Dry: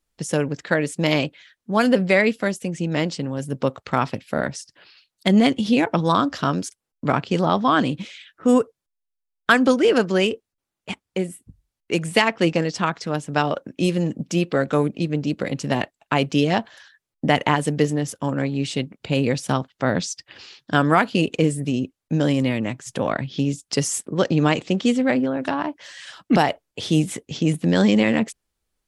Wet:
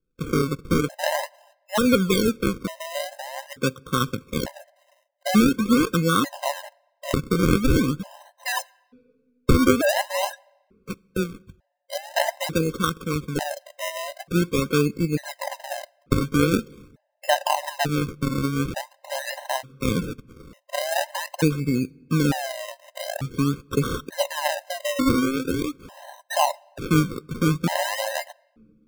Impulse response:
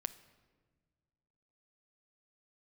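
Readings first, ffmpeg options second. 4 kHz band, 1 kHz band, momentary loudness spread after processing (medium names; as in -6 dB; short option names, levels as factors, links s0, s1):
-2.0 dB, -3.0 dB, 14 LU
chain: -filter_complex "[0:a]acrusher=samples=36:mix=1:aa=0.000001:lfo=1:lforange=36:lforate=0.45,asplit=2[s0][s1];[1:a]atrim=start_sample=2205[s2];[s1][s2]afir=irnorm=-1:irlink=0,volume=0.335[s3];[s0][s3]amix=inputs=2:normalize=0,afftfilt=real='re*gt(sin(2*PI*0.56*pts/sr)*(1-2*mod(floor(b*sr/1024/530),2)),0)':imag='im*gt(sin(2*PI*0.56*pts/sr)*(1-2*mod(floor(b*sr/1024/530),2)),0)':win_size=1024:overlap=0.75,volume=0.794"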